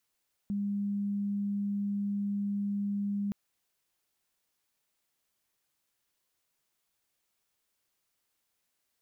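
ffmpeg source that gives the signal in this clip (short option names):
-f lavfi -i "aevalsrc='0.0355*sin(2*PI*202*t)':d=2.82:s=44100"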